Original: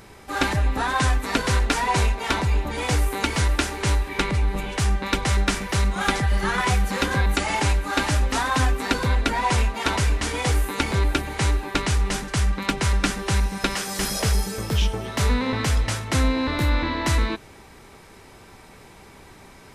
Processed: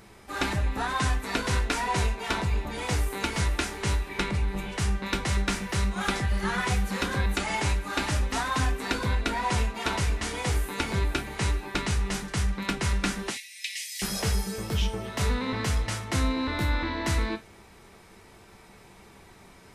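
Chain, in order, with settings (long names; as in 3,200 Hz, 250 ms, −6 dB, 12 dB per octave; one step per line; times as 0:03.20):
0:13.30–0:14.02: Butterworth high-pass 1,900 Hz 96 dB per octave
reverb whose tail is shaped and stops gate 90 ms falling, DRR 6 dB
level −6 dB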